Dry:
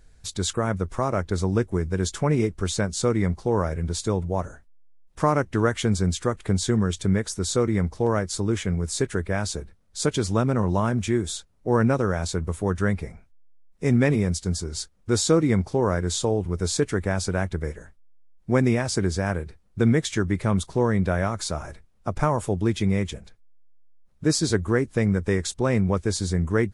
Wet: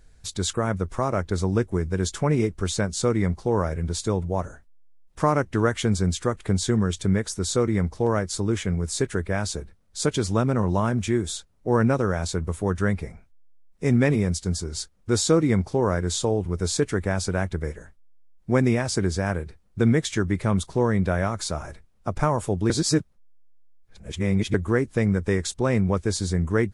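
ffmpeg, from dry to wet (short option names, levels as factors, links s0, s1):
-filter_complex "[0:a]asplit=3[s0][s1][s2];[s0]atrim=end=22.702[s3];[s1]atrim=start=22.698:end=24.542,asetpts=PTS-STARTPTS,areverse[s4];[s2]atrim=start=24.538[s5];[s3][s4]acrossfade=d=0.004:c1=hsin:c2=hsin[s6];[s6][s5]acrossfade=d=0.004:c1=hsin:c2=hsin"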